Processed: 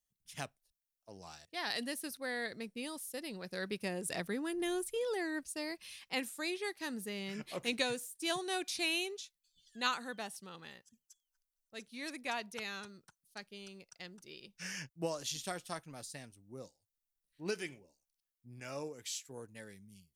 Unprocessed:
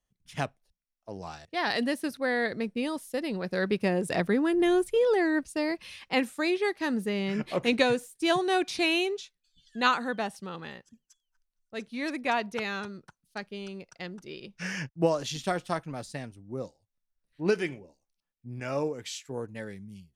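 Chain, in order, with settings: pre-emphasis filter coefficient 0.8; trim +1 dB

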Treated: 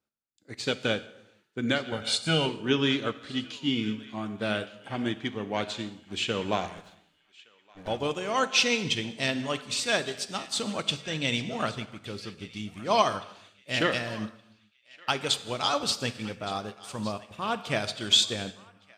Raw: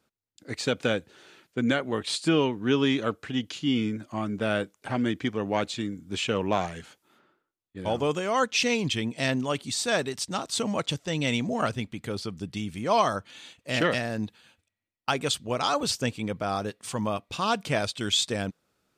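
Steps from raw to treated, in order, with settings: 6.77–7.88 s: comb filter that takes the minimum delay 6.7 ms; 16.96–17.58 s: peaking EQ 5 kHz -14.5 dB 1.1 oct; band-passed feedback delay 1168 ms, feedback 53%, band-pass 2.8 kHz, level -12 dB; gated-style reverb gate 460 ms falling, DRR 8 dB; dynamic bell 3.5 kHz, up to +5 dB, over -41 dBFS, Q 0.93; 1.92–2.46 s: comb 1.4 ms, depth 82%; upward expansion 1.5:1, over -45 dBFS

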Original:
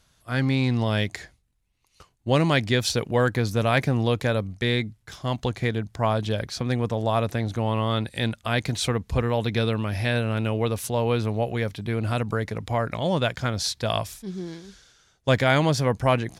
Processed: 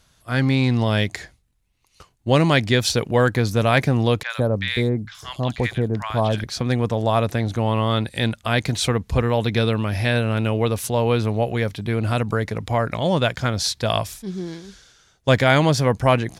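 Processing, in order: 4.23–6.44 s: three bands offset in time mids, highs, lows 70/150 ms, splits 1.1/4.8 kHz; trim +4 dB

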